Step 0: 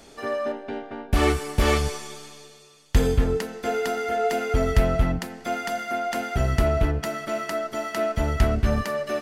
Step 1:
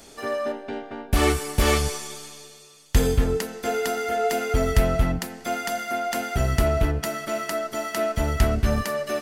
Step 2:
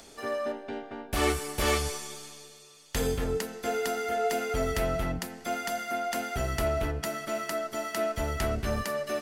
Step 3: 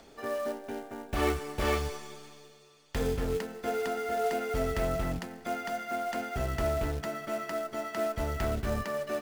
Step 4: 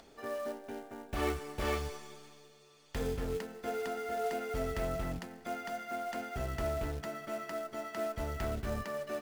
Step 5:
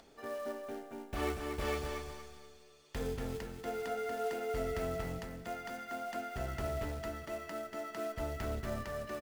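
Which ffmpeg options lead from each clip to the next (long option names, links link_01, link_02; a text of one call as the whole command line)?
ffmpeg -i in.wav -af "highshelf=frequency=5900:gain=9" out.wav
ffmpeg -i in.wav -filter_complex "[0:a]acrossover=split=320|7300[link_01][link_02][link_03];[link_01]asoftclip=type=tanh:threshold=-24dB[link_04];[link_02]acompressor=mode=upward:threshold=-46dB:ratio=2.5[link_05];[link_04][link_05][link_03]amix=inputs=3:normalize=0,volume=-4.5dB" out.wav
ffmpeg -i in.wav -af "aemphasis=mode=reproduction:type=75fm,acrusher=bits=4:mode=log:mix=0:aa=0.000001,volume=-2dB" out.wav
ffmpeg -i in.wav -af "acompressor=mode=upward:threshold=-50dB:ratio=2.5,volume=-5dB" out.wav
ffmpeg -i in.wav -af "aecho=1:1:237|474|711|948:0.473|0.147|0.0455|0.0141,volume=-2.5dB" out.wav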